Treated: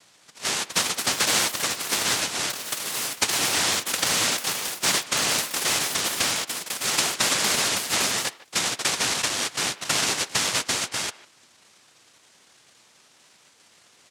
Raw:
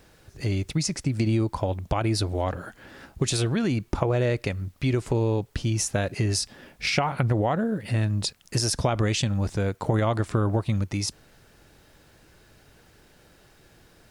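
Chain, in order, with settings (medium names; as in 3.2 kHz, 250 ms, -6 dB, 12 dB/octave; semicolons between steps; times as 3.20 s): noise-vocoded speech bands 1; ever faster or slower copies 445 ms, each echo +6 st, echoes 2, each echo -6 dB; speakerphone echo 150 ms, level -18 dB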